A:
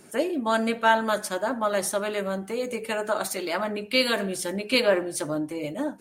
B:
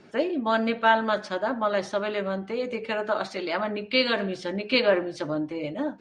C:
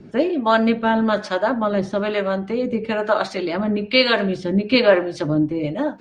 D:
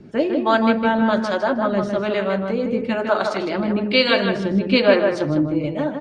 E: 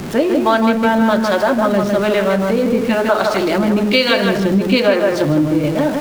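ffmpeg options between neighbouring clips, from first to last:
-af "lowpass=f=4700:w=0.5412,lowpass=f=4700:w=1.3066"
-filter_complex "[0:a]lowshelf=f=270:g=10.5,acrossover=split=430[s0][s1];[s0]aeval=exprs='val(0)*(1-0.7/2+0.7/2*cos(2*PI*1.1*n/s))':c=same[s2];[s1]aeval=exprs='val(0)*(1-0.7/2-0.7/2*cos(2*PI*1.1*n/s))':c=same[s3];[s2][s3]amix=inputs=2:normalize=0,volume=2.37"
-filter_complex "[0:a]asplit=2[s0][s1];[s1]adelay=156,lowpass=f=2800:p=1,volume=0.596,asplit=2[s2][s3];[s3]adelay=156,lowpass=f=2800:p=1,volume=0.26,asplit=2[s4][s5];[s5]adelay=156,lowpass=f=2800:p=1,volume=0.26,asplit=2[s6][s7];[s7]adelay=156,lowpass=f=2800:p=1,volume=0.26[s8];[s0][s2][s4][s6][s8]amix=inputs=5:normalize=0,volume=0.891"
-af "aeval=exprs='val(0)+0.5*0.0376*sgn(val(0))':c=same,acompressor=threshold=0.141:ratio=3,volume=2"

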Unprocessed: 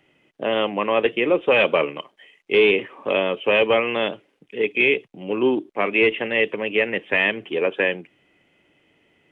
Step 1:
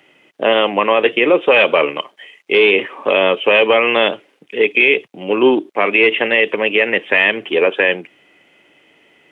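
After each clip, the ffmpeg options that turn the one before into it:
-af "highpass=f=410:p=1,alimiter=level_in=3.98:limit=0.891:release=50:level=0:latency=1,volume=0.891"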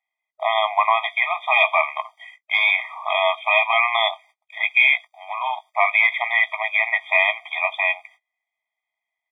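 -filter_complex "[0:a]agate=range=0.0355:threshold=0.00891:ratio=16:detection=peak,asplit=2[s0][s1];[s1]adelay=17,volume=0.266[s2];[s0][s2]amix=inputs=2:normalize=0,afftfilt=real='re*eq(mod(floor(b*sr/1024/630),2),1)':imag='im*eq(mod(floor(b*sr/1024/630),2),1)':win_size=1024:overlap=0.75"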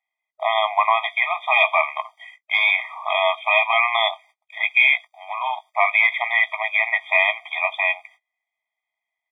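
-af anull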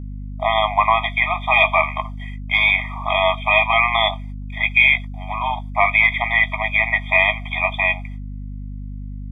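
-af "aeval=exprs='val(0)+0.0282*(sin(2*PI*50*n/s)+sin(2*PI*2*50*n/s)/2+sin(2*PI*3*50*n/s)/3+sin(2*PI*4*50*n/s)/4+sin(2*PI*5*50*n/s)/5)':c=same,volume=1.26"

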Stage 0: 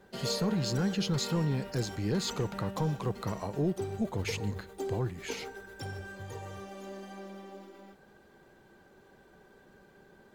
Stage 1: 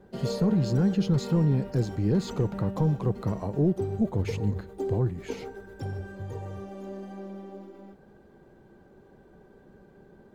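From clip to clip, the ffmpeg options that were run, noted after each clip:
-af "tiltshelf=f=910:g=7.5"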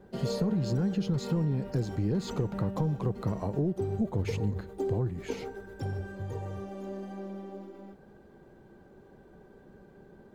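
-af "acompressor=threshold=0.0562:ratio=6"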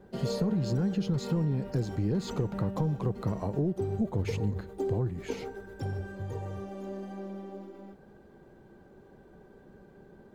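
-af anull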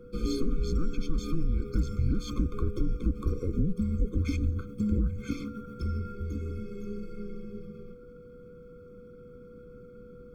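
-af "aeval=exprs='val(0)+0.00282*sin(2*PI*670*n/s)':c=same,afreqshift=-180,afftfilt=real='re*eq(mod(floor(b*sr/1024/520),2),0)':imag='im*eq(mod(floor(b*sr/1024/520),2),0)':win_size=1024:overlap=0.75,volume=1.41"

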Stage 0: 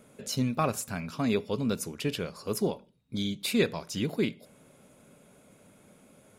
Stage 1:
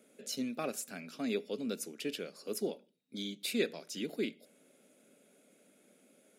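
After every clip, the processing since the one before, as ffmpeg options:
-af "highpass=f=230:w=0.5412,highpass=f=230:w=1.3066,equalizer=f=1000:t=o:w=0.6:g=-14,volume=0.562"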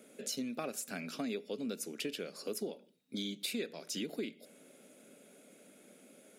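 -af "acompressor=threshold=0.00794:ratio=5,volume=2"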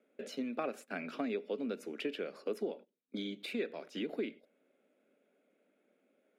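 -filter_complex "[0:a]acrossover=split=210 2900:gain=0.112 1 0.0891[s0][s1][s2];[s0][s1][s2]amix=inputs=3:normalize=0,agate=range=0.158:threshold=0.00224:ratio=16:detection=peak,volume=1.5"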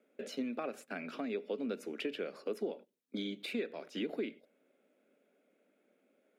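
-af "bandreject=f=50:t=h:w=6,bandreject=f=100:t=h:w=6,bandreject=f=150:t=h:w=6,alimiter=level_in=1.5:limit=0.0631:level=0:latency=1:release=274,volume=0.668,volume=1.12"

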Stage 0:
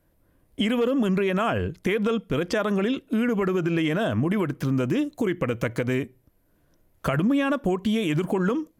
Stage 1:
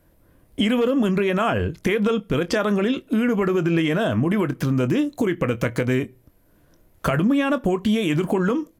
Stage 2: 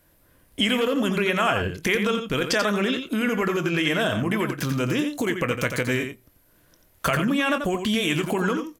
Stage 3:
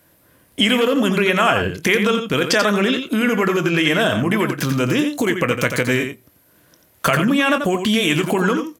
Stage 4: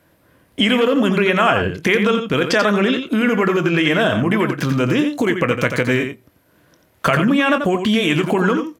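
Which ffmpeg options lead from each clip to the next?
-filter_complex "[0:a]asplit=2[s0][s1];[s1]acompressor=threshold=0.0282:ratio=6,volume=1.26[s2];[s0][s2]amix=inputs=2:normalize=0,asplit=2[s3][s4];[s4]adelay=24,volume=0.224[s5];[s3][s5]amix=inputs=2:normalize=0"
-af "tiltshelf=f=1100:g=-5.5,aecho=1:1:88:0.422"
-af "highpass=98,volume=2"
-af "highshelf=f=5400:g=-12,volume=1.19"

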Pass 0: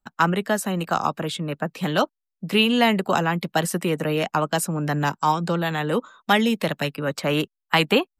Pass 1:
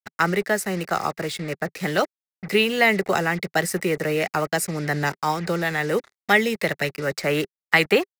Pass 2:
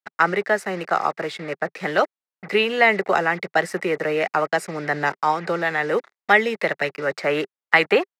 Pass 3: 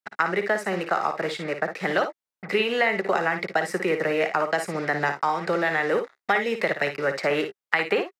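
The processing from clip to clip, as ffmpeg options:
-af "acrusher=bits=5:mix=0:aa=0.5,equalizer=f=160:t=o:w=0.33:g=-3,equalizer=f=250:t=o:w=0.33:g=-10,equalizer=f=400:t=o:w=0.33:g=5,equalizer=f=1000:t=o:w=0.33:g=-8,equalizer=f=2000:t=o:w=0.33:g=10,equalizer=f=3150:t=o:w=0.33:g=-7,equalizer=f=5000:t=o:w=0.33:g=4"
-af "bandpass=f=980:t=q:w=0.55:csg=0,volume=1.58"
-filter_complex "[0:a]acompressor=threshold=0.112:ratio=6,asplit=2[s0][s1];[s1]aecho=0:1:56|71:0.376|0.141[s2];[s0][s2]amix=inputs=2:normalize=0"

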